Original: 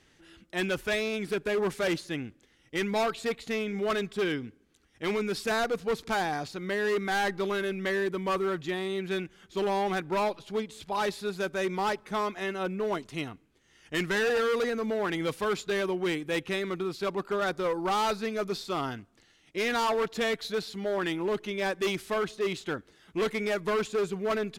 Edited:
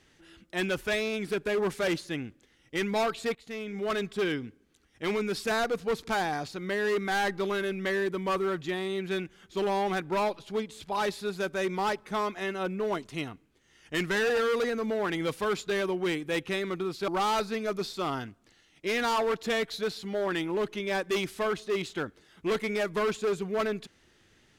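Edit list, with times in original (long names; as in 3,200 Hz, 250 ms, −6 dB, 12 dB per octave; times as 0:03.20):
0:03.35–0:04.05: fade in linear, from −12.5 dB
0:17.08–0:17.79: remove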